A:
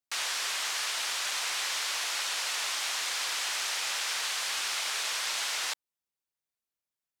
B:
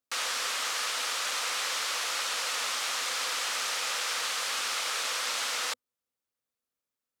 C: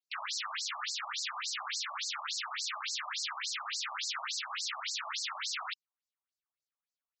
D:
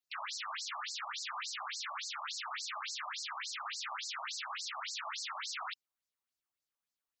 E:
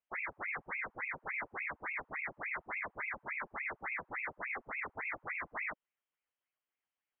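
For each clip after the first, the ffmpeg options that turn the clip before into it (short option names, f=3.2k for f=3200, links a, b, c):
-af "equalizer=f=100:t=o:w=0.33:g=6,equalizer=f=250:t=o:w=0.33:g=10,equalizer=f=500:t=o:w=0.33:g=10,equalizer=f=1.25k:t=o:w=0.33:g=6"
-af "afftfilt=real='re*between(b*sr/1024,840*pow(5900/840,0.5+0.5*sin(2*PI*3.5*pts/sr))/1.41,840*pow(5900/840,0.5+0.5*sin(2*PI*3.5*pts/sr))*1.41)':imag='im*between(b*sr/1024,840*pow(5900/840,0.5+0.5*sin(2*PI*3.5*pts/sr))/1.41,840*pow(5900/840,0.5+0.5*sin(2*PI*3.5*pts/sr))*1.41)':win_size=1024:overlap=0.75"
-af "alimiter=level_in=10dB:limit=-24dB:level=0:latency=1:release=30,volume=-10dB,volume=1dB"
-af "lowpass=f=2.8k:t=q:w=0.5098,lowpass=f=2.8k:t=q:w=0.6013,lowpass=f=2.8k:t=q:w=0.9,lowpass=f=2.8k:t=q:w=2.563,afreqshift=-3300,volume=2.5dB"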